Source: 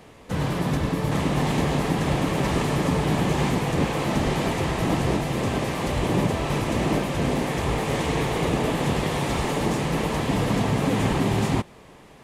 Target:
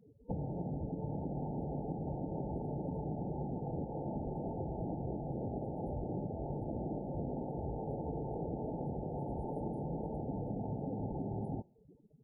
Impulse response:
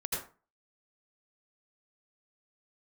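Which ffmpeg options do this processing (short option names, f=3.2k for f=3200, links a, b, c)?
-af "afftdn=nr=36:nf=-36,acompressor=threshold=-34dB:ratio=12,afftfilt=real='re*(1-between(b*sr/4096,910,9100))':imag='im*(1-between(b*sr/4096,910,9100))':win_size=4096:overlap=0.75,volume=-1dB"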